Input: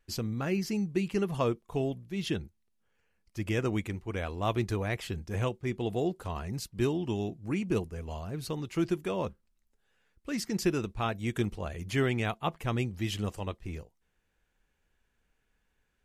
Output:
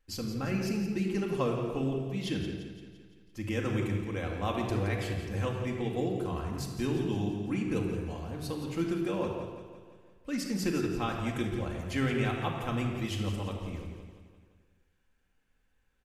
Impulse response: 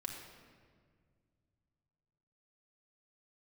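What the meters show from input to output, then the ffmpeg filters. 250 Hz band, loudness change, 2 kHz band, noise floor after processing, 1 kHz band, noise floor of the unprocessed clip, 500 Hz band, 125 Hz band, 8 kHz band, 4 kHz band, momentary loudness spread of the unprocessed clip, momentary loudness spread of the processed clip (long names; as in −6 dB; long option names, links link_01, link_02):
+0.5 dB, 0.0 dB, −0.5 dB, −71 dBFS, −0.5 dB, −76 dBFS, −1.0 dB, 0.0 dB, −1.5 dB, −1.0 dB, 8 LU, 10 LU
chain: -filter_complex "[0:a]aecho=1:1:171|342|513|684|855|1026:0.299|0.164|0.0903|0.0497|0.0273|0.015[link_01];[1:a]atrim=start_sample=2205,afade=type=out:start_time=0.36:duration=0.01,atrim=end_sample=16317[link_02];[link_01][link_02]afir=irnorm=-1:irlink=0"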